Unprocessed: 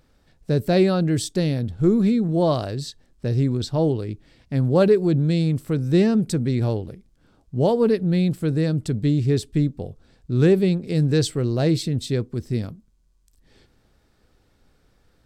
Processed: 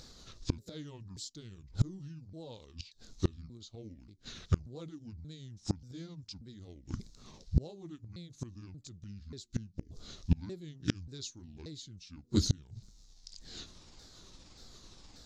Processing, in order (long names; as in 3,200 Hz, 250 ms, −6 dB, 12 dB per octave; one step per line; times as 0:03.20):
pitch shifter swept by a sawtooth −10 semitones, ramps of 583 ms
flat-topped bell 5,200 Hz +15 dB 1.2 octaves
gate with flip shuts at −19 dBFS, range −32 dB
level +5.5 dB